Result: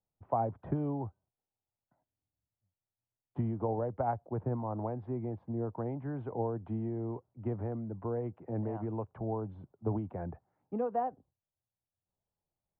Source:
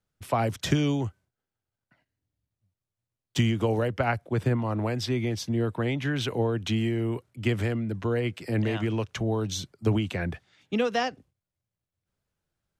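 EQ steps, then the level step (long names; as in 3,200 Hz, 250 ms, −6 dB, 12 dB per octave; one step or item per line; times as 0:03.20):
transistor ladder low-pass 1,000 Hz, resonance 50%
high-frequency loss of the air 91 metres
0.0 dB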